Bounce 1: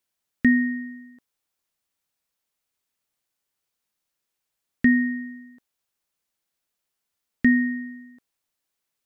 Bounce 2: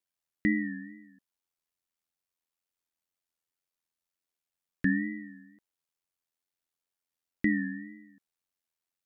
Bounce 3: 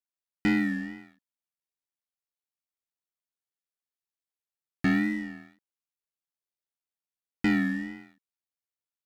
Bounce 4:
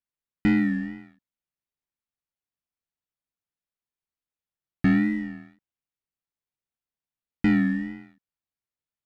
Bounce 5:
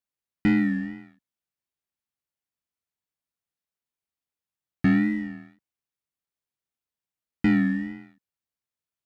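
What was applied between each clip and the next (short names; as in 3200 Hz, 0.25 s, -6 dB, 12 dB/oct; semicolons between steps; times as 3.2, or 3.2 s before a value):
ring modulator 43 Hz; wow and flutter 91 cents; gain -6 dB
sample leveller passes 3; gain -3.5 dB
tone controls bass +8 dB, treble -8 dB
HPF 40 Hz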